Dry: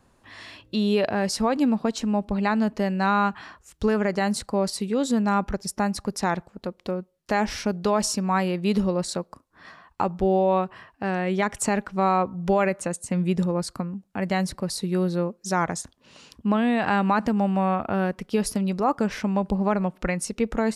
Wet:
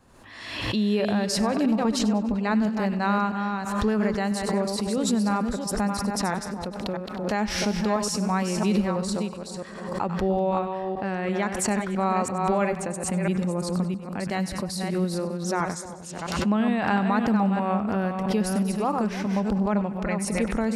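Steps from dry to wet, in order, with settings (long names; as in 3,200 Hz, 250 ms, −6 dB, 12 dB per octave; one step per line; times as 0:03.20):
delay that plays each chunk backwards 332 ms, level −5.5 dB
echo with a time of its own for lows and highs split 1,000 Hz, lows 305 ms, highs 97 ms, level −14 dB
dynamic equaliser 210 Hz, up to +4 dB, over −34 dBFS, Q 6.1
background raised ahead of every attack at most 49 dB per second
level −4 dB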